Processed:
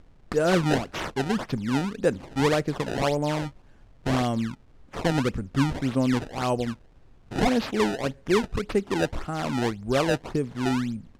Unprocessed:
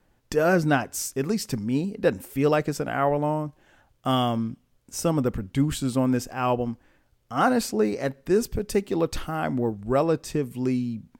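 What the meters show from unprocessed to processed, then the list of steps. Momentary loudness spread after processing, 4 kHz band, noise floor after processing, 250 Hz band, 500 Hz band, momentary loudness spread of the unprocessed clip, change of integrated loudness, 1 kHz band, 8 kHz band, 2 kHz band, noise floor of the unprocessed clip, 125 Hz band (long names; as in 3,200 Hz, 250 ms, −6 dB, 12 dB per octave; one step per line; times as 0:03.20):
7 LU, +2.5 dB, −54 dBFS, −0.5 dB, −1.5 dB, 7 LU, −1.0 dB, −2.0 dB, −5.0 dB, +0.5 dB, −66 dBFS, 0.0 dB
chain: noise gate −46 dBFS, range −7 dB
dynamic equaliser 1,000 Hz, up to −3 dB, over −32 dBFS, Q 0.95
background noise brown −52 dBFS
sample-and-hold swept by an LFO 23×, swing 160% 1.8 Hz
high-frequency loss of the air 58 metres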